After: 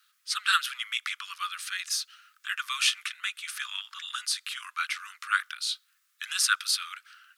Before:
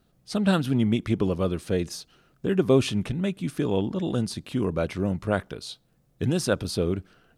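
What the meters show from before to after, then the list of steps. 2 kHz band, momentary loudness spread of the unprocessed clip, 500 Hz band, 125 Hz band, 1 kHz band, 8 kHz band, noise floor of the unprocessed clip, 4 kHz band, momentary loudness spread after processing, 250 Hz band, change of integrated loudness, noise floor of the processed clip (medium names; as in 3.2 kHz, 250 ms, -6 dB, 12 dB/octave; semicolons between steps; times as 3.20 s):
+8.0 dB, 11 LU, under -40 dB, under -40 dB, +2.5 dB, +8.0 dB, -65 dBFS, +8.0 dB, 11 LU, under -40 dB, -3.0 dB, -71 dBFS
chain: steep high-pass 1.2 kHz 72 dB/octave; trim +8 dB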